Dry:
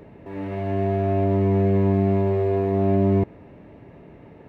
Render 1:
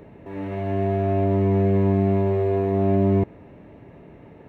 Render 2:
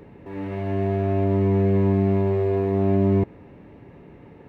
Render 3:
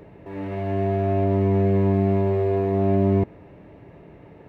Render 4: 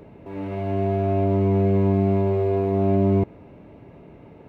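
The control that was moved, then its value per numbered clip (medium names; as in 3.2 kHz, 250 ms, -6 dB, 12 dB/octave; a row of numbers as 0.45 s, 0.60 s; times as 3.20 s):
band-stop, frequency: 4.8 kHz, 640 Hz, 240 Hz, 1.8 kHz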